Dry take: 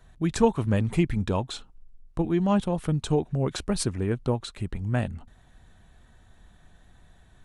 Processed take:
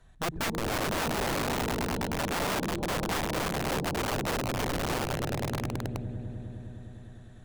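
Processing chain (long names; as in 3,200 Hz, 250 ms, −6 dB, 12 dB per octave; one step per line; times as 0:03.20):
treble cut that deepens with the level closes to 420 Hz, closed at −24 dBFS
echo that builds up and dies away 102 ms, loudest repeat 5, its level −8 dB
wrap-around overflow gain 21.5 dB
level −3.5 dB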